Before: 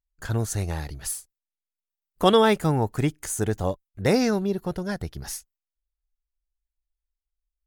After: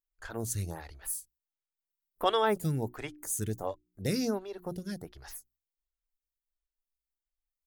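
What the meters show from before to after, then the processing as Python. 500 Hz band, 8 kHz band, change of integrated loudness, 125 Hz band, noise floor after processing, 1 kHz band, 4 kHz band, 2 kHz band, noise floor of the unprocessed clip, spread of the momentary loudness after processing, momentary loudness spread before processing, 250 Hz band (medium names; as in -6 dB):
-10.0 dB, -5.0 dB, -8.5 dB, -9.5 dB, under -85 dBFS, -7.0 dB, -8.0 dB, -9.0 dB, under -85 dBFS, 14 LU, 14 LU, -10.5 dB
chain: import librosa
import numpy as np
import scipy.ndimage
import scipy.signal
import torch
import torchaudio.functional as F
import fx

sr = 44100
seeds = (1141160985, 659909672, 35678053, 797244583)

y = fx.high_shelf(x, sr, hz=11000.0, db=10.0)
y = fx.hum_notches(y, sr, base_hz=60, count=6)
y = fx.stagger_phaser(y, sr, hz=1.4)
y = F.gain(torch.from_numpy(y), -6.0).numpy()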